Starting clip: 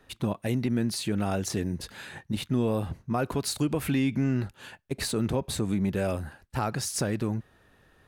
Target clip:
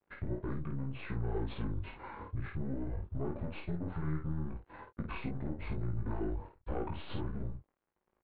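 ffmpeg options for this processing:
-filter_complex "[0:a]aeval=exprs='(tanh(15.8*val(0)+0.65)-tanh(0.65))/15.8':c=same,atempo=1.7,aresample=16000,aeval=exprs='sgn(val(0))*max(abs(val(0))-0.00126,0)':c=same,aresample=44100,equalizer=f=650:w=4.1:g=6,asplit=2[s0][s1];[s1]adelay=13,volume=0.316[s2];[s0][s2]amix=inputs=2:normalize=0,asetrate=25442,aresample=44100,acompressor=threshold=0.0158:ratio=6,lowpass=1600,asplit=2[s3][s4];[s4]aecho=0:1:19|52:0.562|0.562[s5];[s3][s5]amix=inputs=2:normalize=0,volume=1.19"

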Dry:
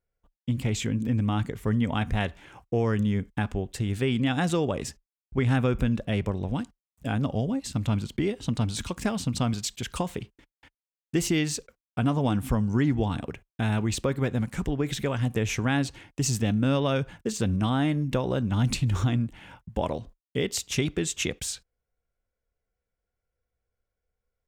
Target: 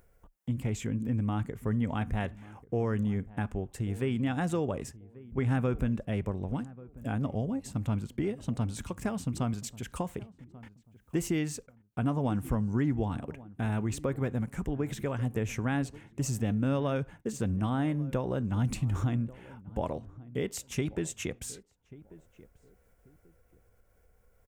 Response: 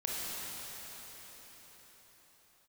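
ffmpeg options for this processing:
-filter_complex "[0:a]equalizer=f=4000:w=1:g=-10,acompressor=mode=upward:threshold=0.01:ratio=2.5,asplit=2[s0][s1];[s1]adelay=1138,lowpass=f=900:p=1,volume=0.119,asplit=2[s2][s3];[s3]adelay=1138,lowpass=f=900:p=1,volume=0.27[s4];[s2][s4]amix=inputs=2:normalize=0[s5];[s0][s5]amix=inputs=2:normalize=0,volume=0.596"

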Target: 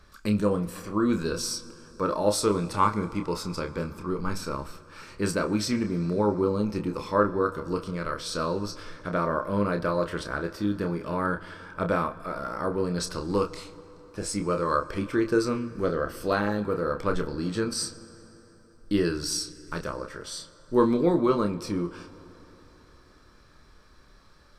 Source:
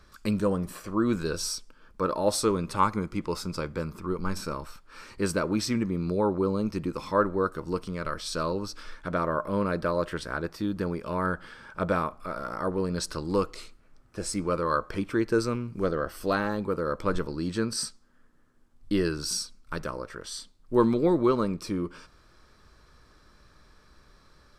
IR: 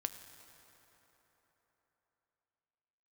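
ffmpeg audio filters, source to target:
-filter_complex "[0:a]asplit=2[s0][s1];[1:a]atrim=start_sample=2205,lowpass=8500,adelay=29[s2];[s1][s2]afir=irnorm=-1:irlink=0,volume=0.531[s3];[s0][s3]amix=inputs=2:normalize=0"

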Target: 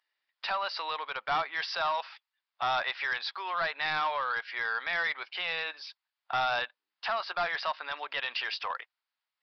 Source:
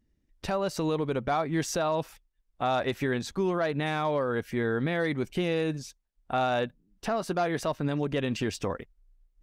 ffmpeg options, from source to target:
-af "highpass=f=890:w=0.5412,highpass=f=890:w=1.3066,aresample=11025,asoftclip=type=tanh:threshold=0.0316,aresample=44100,volume=2.24"

